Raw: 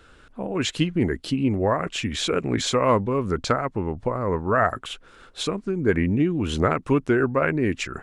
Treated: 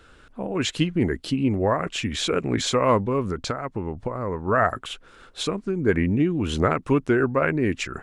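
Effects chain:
0:03.26–0:04.48: downward compressor 6 to 1, threshold −24 dBFS, peak gain reduction 8.5 dB

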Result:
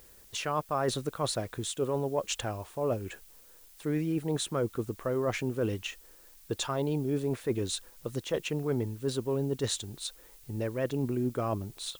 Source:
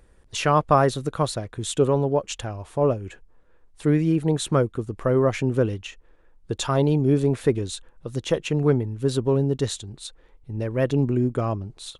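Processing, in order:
low-shelf EQ 160 Hz −8 dB
reversed playback
downward compressor 6 to 1, threshold −27 dBFS, peak gain reduction 14 dB
reversed playback
background noise blue −57 dBFS

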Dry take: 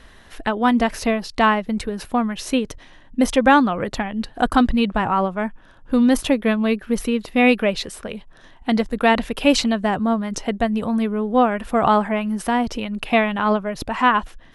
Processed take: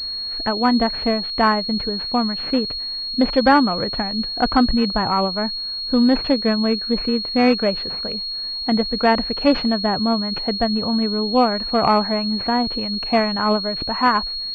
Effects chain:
switching amplifier with a slow clock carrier 4,300 Hz

